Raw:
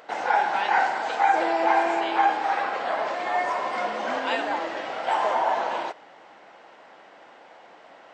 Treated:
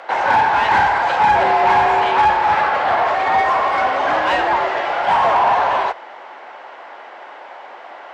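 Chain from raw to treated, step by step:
mid-hump overdrive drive 19 dB, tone 1,400 Hz, clips at −8.5 dBFS
frequency shifter +51 Hz
level +3.5 dB

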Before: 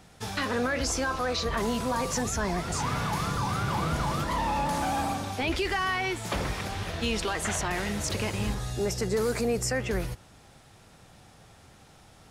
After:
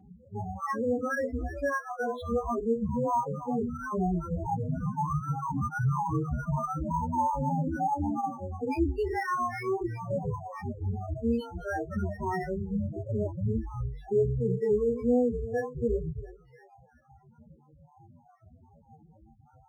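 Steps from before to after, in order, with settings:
time-frequency cells dropped at random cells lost 35%
reverb reduction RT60 0.84 s
high-pass filter 73 Hz 6 dB per octave
head-to-tape spacing loss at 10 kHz 41 dB
mains-hum notches 50/100/150/200/250/300/350/400/450/500 Hz
on a send: feedback echo with a high-pass in the loop 218 ms, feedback 52%, high-pass 990 Hz, level −8.5 dB
on the sum: tape wow and flutter 80 cents
multi-voice chorus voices 4, 0.19 Hz, delay 17 ms, depth 4.8 ms
spectral peaks only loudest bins 8
in parallel at +2.5 dB: brickwall limiter −34 dBFS, peak gain reduction 11 dB
on the sum: phase-vocoder stretch with locked phases 1.6×
linearly interpolated sample-rate reduction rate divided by 6×
level +4.5 dB

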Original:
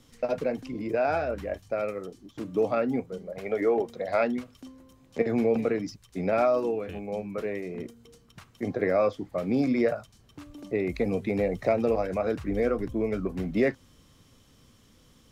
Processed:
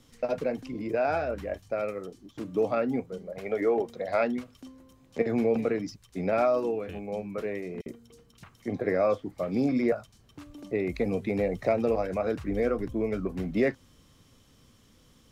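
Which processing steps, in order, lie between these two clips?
0:07.81–0:09.92: multiband delay without the direct sound highs, lows 50 ms, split 3,200 Hz
level −1 dB

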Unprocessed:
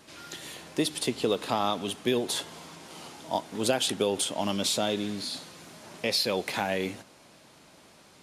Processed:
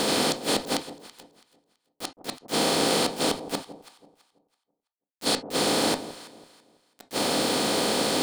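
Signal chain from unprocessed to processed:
compressor on every frequency bin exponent 0.2
gate with flip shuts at −9 dBFS, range −41 dB
bit-depth reduction 6 bits, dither none
delay that swaps between a low-pass and a high-pass 165 ms, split 880 Hz, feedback 51%, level −12 dB
on a send at −8 dB: convolution reverb, pre-delay 4 ms
on the sum: level −3 dB

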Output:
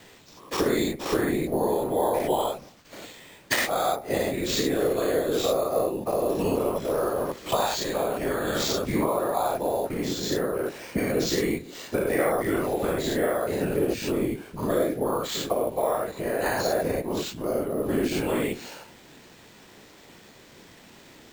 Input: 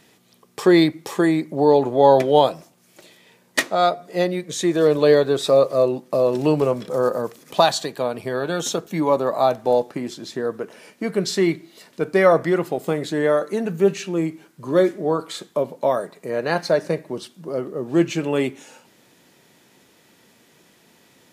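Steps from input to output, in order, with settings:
every bin's largest magnitude spread in time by 120 ms
noise gate with hold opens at −42 dBFS
downward compressor 4 to 1, threshold −24 dBFS, peak gain reduction 15.5 dB
random phases in short frames
bad sample-rate conversion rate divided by 4×, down none, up hold

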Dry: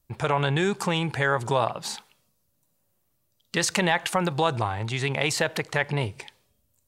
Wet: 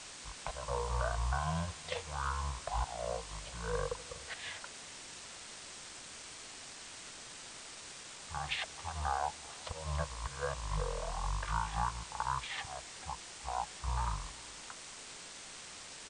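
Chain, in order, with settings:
loose part that buzzes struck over −33 dBFS, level −29 dBFS
Chebyshev band-stop filter 390–1,100 Hz, order 5
parametric band 2,200 Hz +7.5 dB 0.57 octaves
transient designer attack +2 dB, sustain −10 dB
downward compressor 6 to 1, threshold −25 dBFS, peak gain reduction 9.5 dB
volume swells 101 ms
flanger 0.61 Hz, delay 0.2 ms, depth 1.7 ms, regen −78%
on a send: single-tap delay 156 ms −23 dB
on the sum: bit-depth reduction 8 bits, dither triangular
wrong playback speed 78 rpm record played at 33 rpm
level −1 dB

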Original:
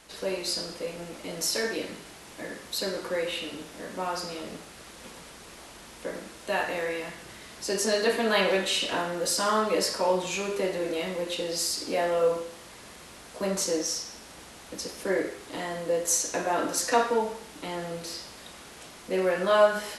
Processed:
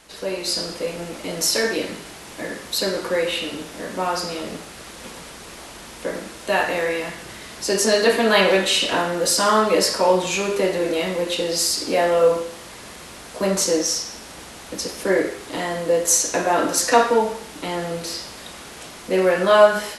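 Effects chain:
automatic gain control gain up to 4.5 dB
level +3.5 dB

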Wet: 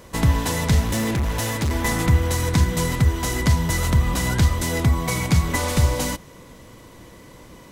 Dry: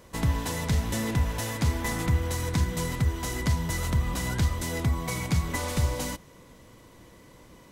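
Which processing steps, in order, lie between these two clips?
0:00.83–0:01.71: hard clipping −26.5 dBFS, distortion −15 dB
level +7.5 dB

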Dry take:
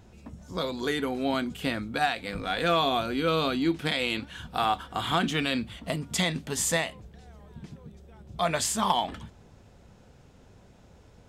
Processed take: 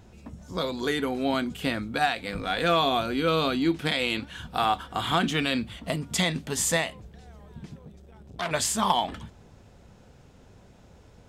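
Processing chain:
0:07.78–0:08.51: saturating transformer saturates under 2,600 Hz
level +1.5 dB

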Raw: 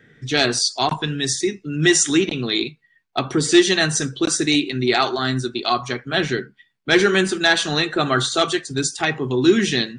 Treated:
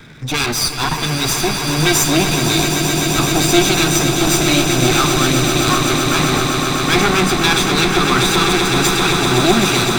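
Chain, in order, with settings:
lower of the sound and its delayed copy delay 0.81 ms
power curve on the samples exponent 0.7
echo that builds up and dies away 128 ms, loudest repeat 8, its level −9.5 dB
level −1 dB

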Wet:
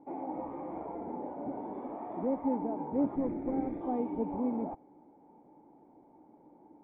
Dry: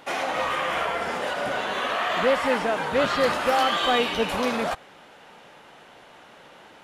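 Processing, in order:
0:03.16–0:03.81: lower of the sound and its delayed copy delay 0.51 ms
formant resonators in series u
level +4 dB

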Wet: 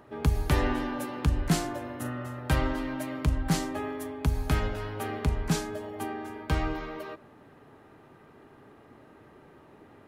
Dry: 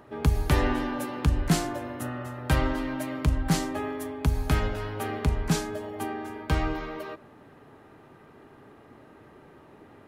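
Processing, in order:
0:01.95–0:02.40: double-tracking delay 41 ms −11 dB
level −2 dB

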